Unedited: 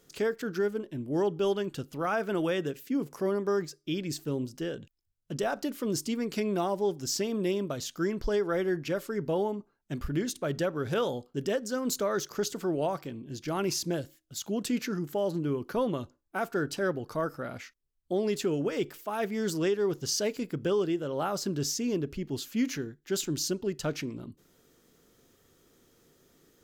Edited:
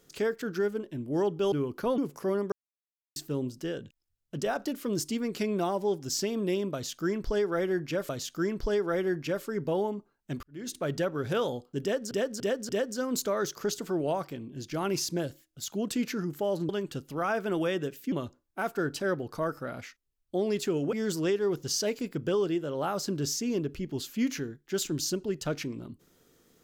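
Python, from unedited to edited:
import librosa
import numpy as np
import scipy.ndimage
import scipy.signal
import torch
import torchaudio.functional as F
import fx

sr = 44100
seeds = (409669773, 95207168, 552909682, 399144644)

y = fx.edit(x, sr, fx.swap(start_s=1.52, length_s=1.43, other_s=15.43, other_length_s=0.46),
    fx.silence(start_s=3.49, length_s=0.64),
    fx.repeat(start_s=7.7, length_s=1.36, count=2),
    fx.fade_in_span(start_s=10.04, length_s=0.3, curve='qua'),
    fx.repeat(start_s=11.43, length_s=0.29, count=4),
    fx.cut(start_s=18.7, length_s=0.61), tone=tone)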